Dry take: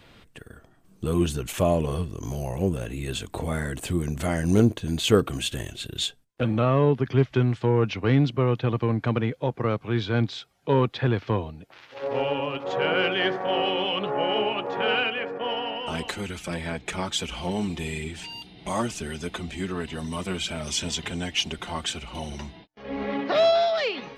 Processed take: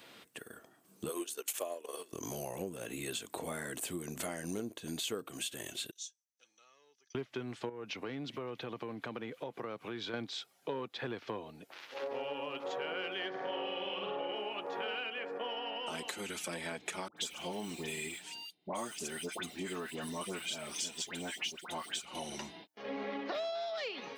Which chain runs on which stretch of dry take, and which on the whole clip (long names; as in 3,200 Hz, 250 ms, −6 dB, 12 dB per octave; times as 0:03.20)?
0:01.09–0:02.13: high-pass filter 340 Hz 24 dB per octave + high-shelf EQ 3,900 Hz +6 dB + transient designer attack +7 dB, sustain −12 dB
0:05.91–0:07.15: resonant band-pass 6,000 Hz, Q 14 + comb filter 2.4 ms, depth 36%
0:07.69–0:10.14: delay with a high-pass on its return 211 ms, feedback 73%, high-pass 2,200 Hz, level −24 dB + downward compressor 2.5 to 1, threshold −33 dBFS
0:13.29–0:14.35: low-pass filter 5,000 Hz + flutter between parallel walls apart 8.6 metres, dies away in 0.87 s
0:17.08–0:22.05: one scale factor per block 7 bits + downward expander −33 dBFS + all-pass dispersion highs, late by 87 ms, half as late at 1,400 Hz
whole clip: high-pass filter 260 Hz 12 dB per octave; high-shelf EQ 6,600 Hz +10.5 dB; downward compressor 6 to 1, threshold −34 dBFS; level −2.5 dB